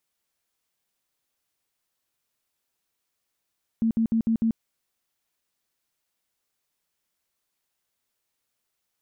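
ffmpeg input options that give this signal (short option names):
-f lavfi -i "aevalsrc='0.112*sin(2*PI*226*mod(t,0.15))*lt(mod(t,0.15),20/226)':d=0.75:s=44100"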